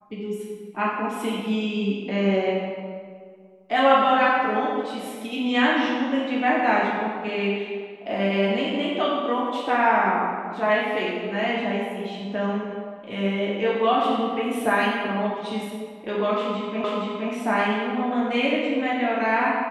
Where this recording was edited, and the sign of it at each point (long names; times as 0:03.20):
0:16.84: the same again, the last 0.47 s